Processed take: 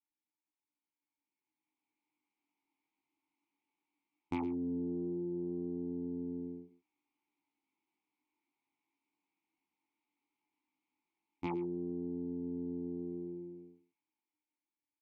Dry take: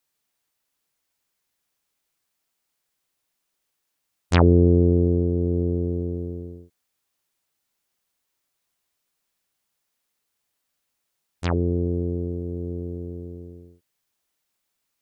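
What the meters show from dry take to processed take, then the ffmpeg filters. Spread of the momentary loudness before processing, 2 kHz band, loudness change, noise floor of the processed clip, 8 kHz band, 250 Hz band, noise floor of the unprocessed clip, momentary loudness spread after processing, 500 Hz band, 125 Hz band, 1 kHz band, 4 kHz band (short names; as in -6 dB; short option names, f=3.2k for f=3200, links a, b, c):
19 LU, -19.5 dB, -17.0 dB, under -85 dBFS, n/a, -12.5 dB, -78 dBFS, 8 LU, -16.5 dB, -25.0 dB, -13.5 dB, under -20 dB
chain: -filter_complex "[0:a]asplit=3[a][b][c];[a]bandpass=f=300:t=q:w=8,volume=0dB[d];[b]bandpass=f=870:t=q:w=8,volume=-6dB[e];[c]bandpass=f=2.24k:t=q:w=8,volume=-9dB[f];[d][e][f]amix=inputs=3:normalize=0,flanger=delay=16:depth=5.4:speed=0.16,acompressor=threshold=-47dB:ratio=8,aecho=1:1:113:0.158,aeval=exprs='0.0141*(cos(1*acos(clip(val(0)/0.0141,-1,1)))-cos(1*PI/2))+0.000178*(cos(4*acos(clip(val(0)/0.0141,-1,1)))-cos(4*PI/2))+0.000112*(cos(5*acos(clip(val(0)/0.0141,-1,1)))-cos(5*PI/2))':c=same,highpass=56,highshelf=f=4.1k:g=-7,dynaudnorm=f=300:g=11:m=13.5dB,volume=-1dB"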